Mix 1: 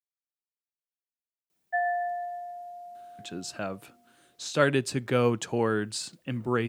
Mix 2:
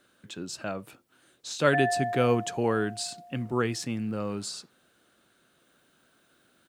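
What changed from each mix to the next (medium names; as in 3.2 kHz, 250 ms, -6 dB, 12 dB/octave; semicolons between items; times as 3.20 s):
speech: entry -2.95 s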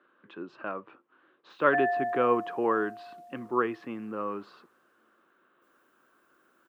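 speech: add cabinet simulation 320–2400 Hz, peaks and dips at 340 Hz +4 dB, 680 Hz -5 dB, 1.1 kHz +9 dB, 2.2 kHz -5 dB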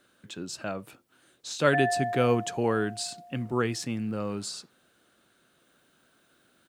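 speech: remove cabinet simulation 320–2400 Hz, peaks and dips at 340 Hz +4 dB, 680 Hz -5 dB, 1.1 kHz +9 dB, 2.2 kHz -5 dB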